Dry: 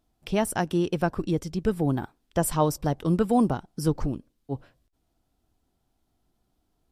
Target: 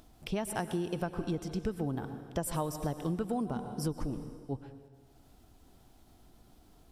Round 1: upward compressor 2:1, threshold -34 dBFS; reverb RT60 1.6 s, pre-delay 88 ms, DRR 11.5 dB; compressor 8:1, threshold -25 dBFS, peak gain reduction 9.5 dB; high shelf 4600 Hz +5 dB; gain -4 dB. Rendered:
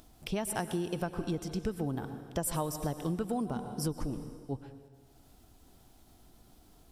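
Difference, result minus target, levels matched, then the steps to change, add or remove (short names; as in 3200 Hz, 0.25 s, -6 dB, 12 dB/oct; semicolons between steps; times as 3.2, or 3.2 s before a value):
8000 Hz band +3.5 dB
remove: high shelf 4600 Hz +5 dB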